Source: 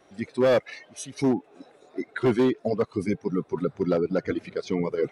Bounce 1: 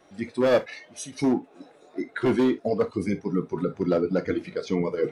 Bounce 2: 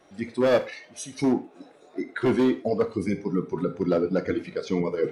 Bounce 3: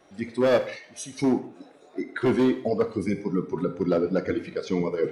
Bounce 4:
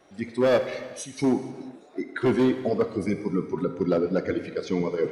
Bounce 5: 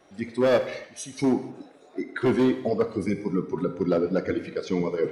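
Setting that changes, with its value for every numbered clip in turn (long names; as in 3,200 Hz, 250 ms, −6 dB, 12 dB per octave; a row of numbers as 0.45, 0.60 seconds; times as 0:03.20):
reverb whose tail is shaped and stops, gate: 90, 140, 210, 500, 320 milliseconds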